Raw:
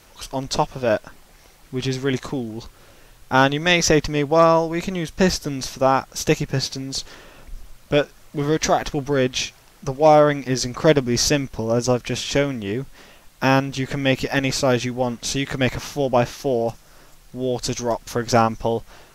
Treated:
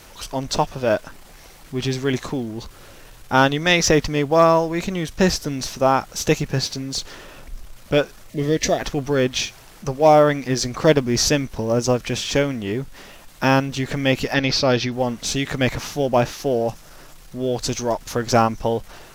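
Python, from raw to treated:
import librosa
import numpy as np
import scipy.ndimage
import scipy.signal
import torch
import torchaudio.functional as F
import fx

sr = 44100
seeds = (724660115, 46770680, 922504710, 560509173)

y = fx.law_mismatch(x, sr, coded='mu')
y = fx.spec_box(y, sr, start_s=8.3, length_s=0.5, low_hz=700.0, high_hz=1700.0, gain_db=-11)
y = fx.high_shelf_res(y, sr, hz=6200.0, db=-8.5, q=3.0, at=(14.34, 14.92))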